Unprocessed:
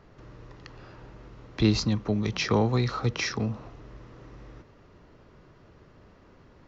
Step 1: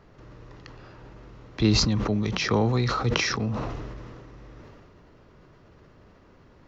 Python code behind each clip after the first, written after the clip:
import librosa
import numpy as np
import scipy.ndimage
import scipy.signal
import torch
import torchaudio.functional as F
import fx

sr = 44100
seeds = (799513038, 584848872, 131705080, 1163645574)

y = fx.sustainer(x, sr, db_per_s=25.0)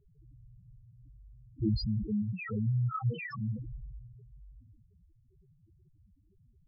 y = fx.spec_topn(x, sr, count=2)
y = F.gain(torch.from_numpy(y), -2.5).numpy()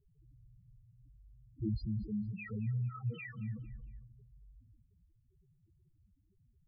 y = fx.fixed_phaser(x, sr, hz=2300.0, stages=4)
y = fx.echo_feedback(y, sr, ms=227, feedback_pct=35, wet_db=-17.5)
y = F.gain(torch.from_numpy(y), -5.5).numpy()